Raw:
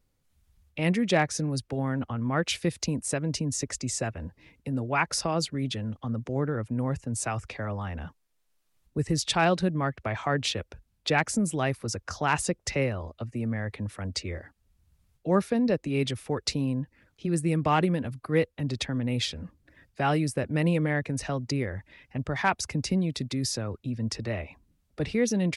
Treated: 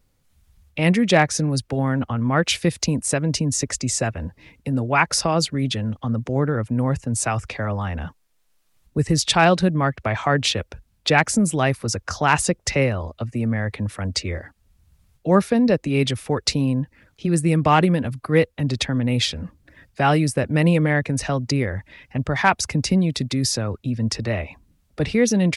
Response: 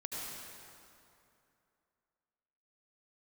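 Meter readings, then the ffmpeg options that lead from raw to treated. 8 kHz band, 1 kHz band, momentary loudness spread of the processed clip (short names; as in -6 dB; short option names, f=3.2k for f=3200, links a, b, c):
+8.0 dB, +8.0 dB, 11 LU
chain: -af "equalizer=f=360:t=o:w=0.77:g=-2,volume=8dB"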